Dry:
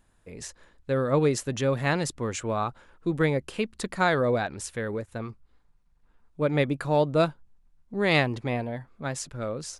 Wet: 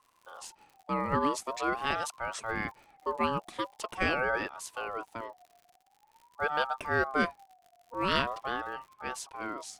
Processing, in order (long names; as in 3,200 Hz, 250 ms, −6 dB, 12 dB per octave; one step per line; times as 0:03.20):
surface crackle 110 per second −42 dBFS
ring modulator whose carrier an LFO sweeps 880 Hz, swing 20%, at 0.45 Hz
level −3 dB